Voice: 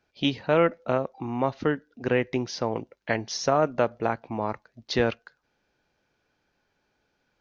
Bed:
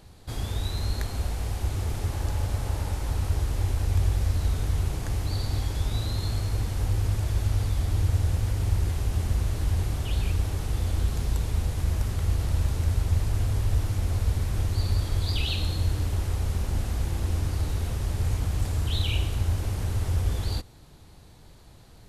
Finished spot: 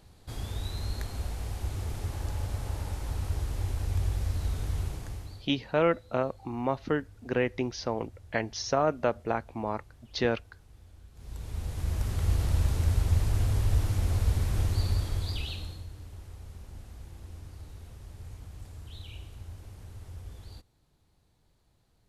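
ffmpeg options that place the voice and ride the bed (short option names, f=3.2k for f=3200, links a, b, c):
-filter_complex "[0:a]adelay=5250,volume=-3.5dB[a];[1:a]volume=20.5dB,afade=t=out:st=4.81:d=0.67:silence=0.0841395,afade=t=in:st=11.14:d=1.19:silence=0.0501187,afade=t=out:st=14.67:d=1.19:silence=0.141254[b];[a][b]amix=inputs=2:normalize=0"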